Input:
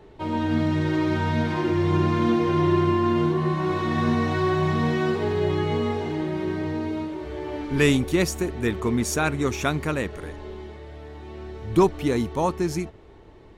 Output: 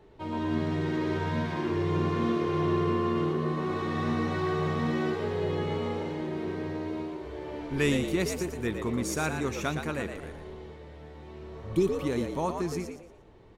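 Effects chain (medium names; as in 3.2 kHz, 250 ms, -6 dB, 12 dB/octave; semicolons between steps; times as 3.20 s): frequency-shifting echo 116 ms, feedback 31%, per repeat +80 Hz, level -7 dB; spectral replace 11.42–12.01 s, 480–1900 Hz both; trim -7 dB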